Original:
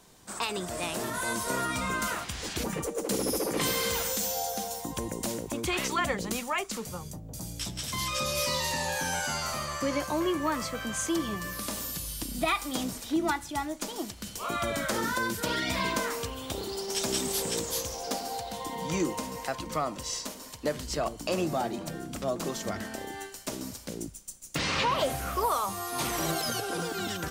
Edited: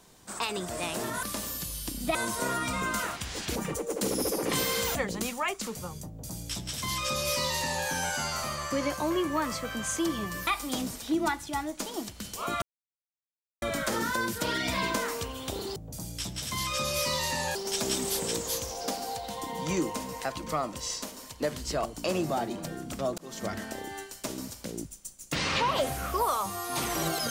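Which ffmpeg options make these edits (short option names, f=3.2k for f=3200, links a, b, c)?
-filter_complex "[0:a]asplit=9[a][b][c][d][e][f][g][h][i];[a]atrim=end=1.232[j];[b]atrim=start=11.568:end=12.492[k];[c]atrim=start=1.228:end=4.032[l];[d]atrim=start=6.048:end=11.572[m];[e]atrim=start=12.488:end=14.64,asetpts=PTS-STARTPTS,afade=t=out:st=2.148:d=0.004:c=hsin,apad=pad_dur=1[n];[f]atrim=start=14.64:end=16.782,asetpts=PTS-STARTPTS,afade=t=in:d=0.004:c=hsin[o];[g]atrim=start=7.168:end=8.962[p];[h]atrim=start=16.778:end=22.41,asetpts=PTS-STARTPTS,afade=t=out:st=5.628:d=0.004:c=hsin[q];[i]atrim=start=22.41,asetpts=PTS-STARTPTS,afade=t=in:d=0.28[r];[j][k]acrossfade=d=0.004:c1=hsin:c2=hsin[s];[s][l]acrossfade=d=0.004:c1=hsin:c2=hsin[t];[t][m]acrossfade=d=0.004:c1=hsin:c2=hsin[u];[n][o]concat=n=2:v=0:a=1[v];[u][v]acrossfade=d=0.004:c1=hsin:c2=hsin[w];[w][p]acrossfade=d=0.004:c1=hsin:c2=hsin[x];[q][r]concat=n=2:v=0:a=1[y];[x][y]acrossfade=d=0.004:c1=hsin:c2=hsin"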